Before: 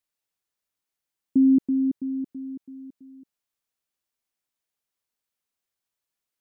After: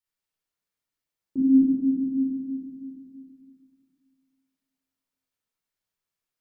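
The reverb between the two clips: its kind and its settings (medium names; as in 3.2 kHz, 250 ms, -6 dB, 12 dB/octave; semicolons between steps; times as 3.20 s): simulated room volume 1500 m³, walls mixed, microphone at 4.4 m; trim -8.5 dB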